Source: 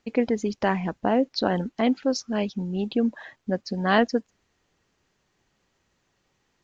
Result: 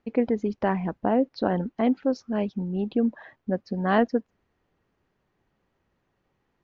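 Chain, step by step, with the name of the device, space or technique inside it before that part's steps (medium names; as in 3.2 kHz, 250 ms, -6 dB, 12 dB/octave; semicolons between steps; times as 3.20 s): through cloth (low-pass 6.4 kHz 12 dB/octave; treble shelf 3 kHz -17.5 dB)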